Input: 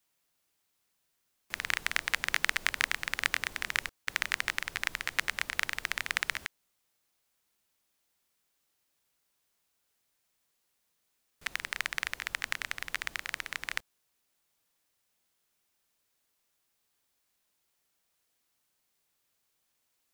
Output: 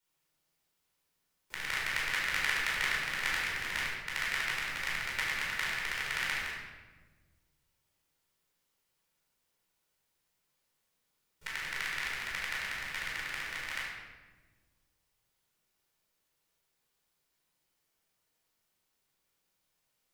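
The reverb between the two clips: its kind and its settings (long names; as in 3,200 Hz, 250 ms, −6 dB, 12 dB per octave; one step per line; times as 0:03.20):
rectangular room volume 990 cubic metres, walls mixed, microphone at 4.6 metres
level −9.5 dB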